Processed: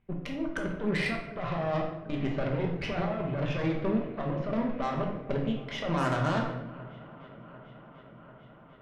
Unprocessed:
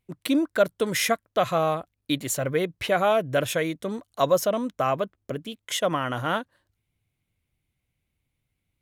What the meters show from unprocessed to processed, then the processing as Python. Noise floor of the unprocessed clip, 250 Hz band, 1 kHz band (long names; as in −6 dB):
−80 dBFS, −2.0 dB, −7.5 dB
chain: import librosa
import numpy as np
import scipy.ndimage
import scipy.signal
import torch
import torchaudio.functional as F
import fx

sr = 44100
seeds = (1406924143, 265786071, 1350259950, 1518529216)

p1 = fx.law_mismatch(x, sr, coded='mu')
p2 = scipy.signal.sosfilt(scipy.signal.bessel(6, 1800.0, 'lowpass', norm='mag', fs=sr, output='sos'), p1)
p3 = fx.over_compress(p2, sr, threshold_db=-27.0, ratio=-1.0)
p4 = p3 + fx.echo_swing(p3, sr, ms=744, ratio=1.5, feedback_pct=70, wet_db=-20.5, dry=0)
p5 = fx.cheby_harmonics(p4, sr, harmonics=(8,), levels_db=(-20,), full_scale_db=-13.0)
p6 = fx.room_shoebox(p5, sr, seeds[0], volume_m3=260.0, walls='mixed', distance_m=1.2)
y = p6 * librosa.db_to_amplitude(-6.5)